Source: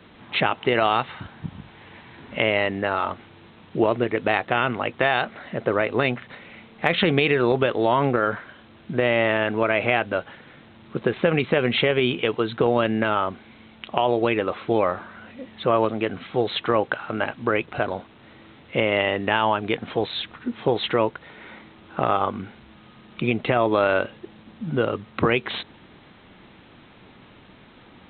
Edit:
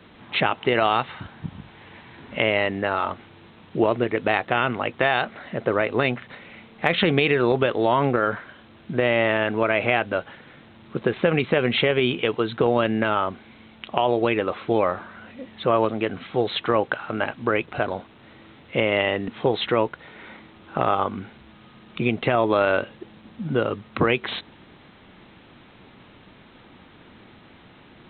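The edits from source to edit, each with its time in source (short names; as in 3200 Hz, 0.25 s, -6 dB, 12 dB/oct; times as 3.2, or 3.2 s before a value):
19.28–20.5 cut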